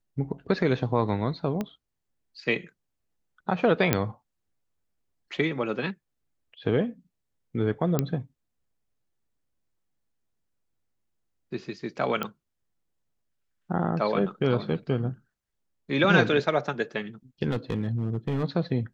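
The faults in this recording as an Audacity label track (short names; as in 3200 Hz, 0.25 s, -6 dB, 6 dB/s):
1.610000	1.610000	pop -17 dBFS
3.930000	3.930000	pop -6 dBFS
7.990000	7.990000	pop -10 dBFS
12.230000	12.230000	pop -16 dBFS
17.500000	18.440000	clipped -22.5 dBFS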